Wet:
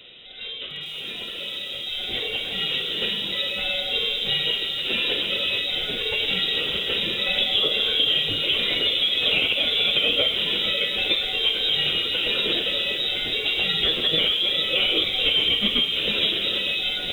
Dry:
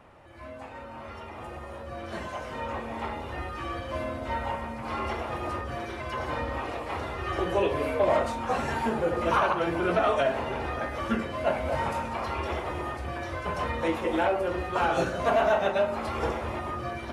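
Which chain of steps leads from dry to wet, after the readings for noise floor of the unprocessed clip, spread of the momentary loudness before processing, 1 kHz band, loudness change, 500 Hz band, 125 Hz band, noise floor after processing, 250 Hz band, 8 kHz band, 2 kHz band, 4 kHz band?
-42 dBFS, 14 LU, -12.0 dB, +8.5 dB, -4.5 dB, -5.0 dB, -34 dBFS, -3.0 dB, no reading, +8.0 dB, +26.0 dB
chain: band-stop 2.1 kHz, Q 13; compression, threshold -26 dBFS, peak gain reduction 7 dB; frequency inversion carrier 3.8 kHz; resonant low shelf 680 Hz +11 dB, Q 3; bit-crushed delay 451 ms, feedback 35%, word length 8-bit, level -10.5 dB; trim +8 dB

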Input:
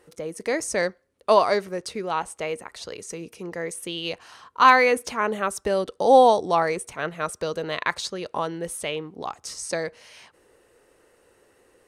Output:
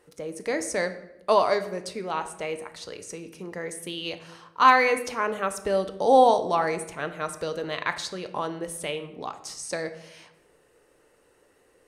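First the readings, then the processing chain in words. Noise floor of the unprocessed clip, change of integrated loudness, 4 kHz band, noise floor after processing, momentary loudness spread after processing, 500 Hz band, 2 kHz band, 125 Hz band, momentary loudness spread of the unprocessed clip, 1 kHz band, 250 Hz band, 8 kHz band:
-62 dBFS, -2.5 dB, -2.5 dB, -62 dBFS, 20 LU, -2.5 dB, -2.5 dB, -2.0 dB, 19 LU, -2.0 dB, -2.0 dB, -2.5 dB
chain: simulated room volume 300 m³, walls mixed, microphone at 0.4 m; trim -3 dB

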